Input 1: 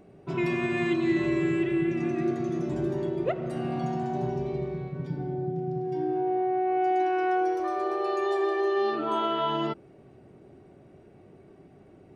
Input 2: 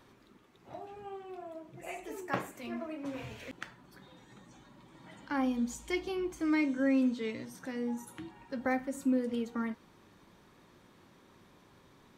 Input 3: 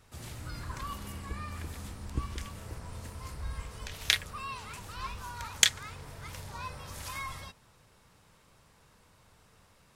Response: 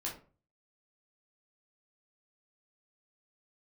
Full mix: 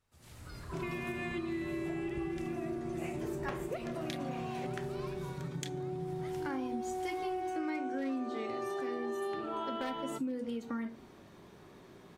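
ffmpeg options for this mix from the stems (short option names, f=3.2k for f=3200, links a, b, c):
-filter_complex "[0:a]bandreject=f=50:t=h:w=6,bandreject=f=100:t=h:w=6,bandreject=f=150:t=h:w=6,bandreject=f=200:t=h:w=6,bandreject=f=250:t=h:w=6,bandreject=f=300:t=h:w=6,bandreject=f=350:t=h:w=6,adelay=450,volume=-4.5dB[a];[1:a]aeval=exprs='0.0841*(abs(mod(val(0)/0.0841+3,4)-2)-1)':c=same,adelay=1150,volume=0dB,asplit=2[b][c];[c]volume=-8.5dB[d];[2:a]dynaudnorm=f=190:g=3:m=12.5dB,volume=-19dB[e];[3:a]atrim=start_sample=2205[f];[d][f]afir=irnorm=-1:irlink=0[g];[a][b][e][g]amix=inputs=4:normalize=0,bandreject=f=60:t=h:w=6,bandreject=f=120:t=h:w=6,acompressor=threshold=-35dB:ratio=4"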